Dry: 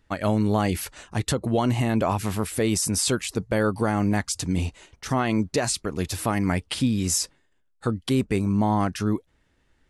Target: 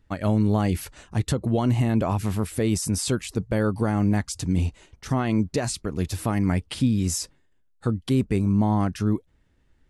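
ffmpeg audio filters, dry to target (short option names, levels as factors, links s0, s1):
-af "lowshelf=f=310:g=8.5,volume=0.596"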